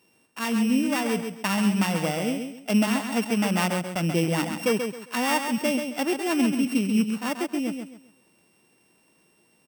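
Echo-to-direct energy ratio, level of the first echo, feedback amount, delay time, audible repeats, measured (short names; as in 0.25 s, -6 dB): -6.0 dB, -6.5 dB, 29%, 0.134 s, 3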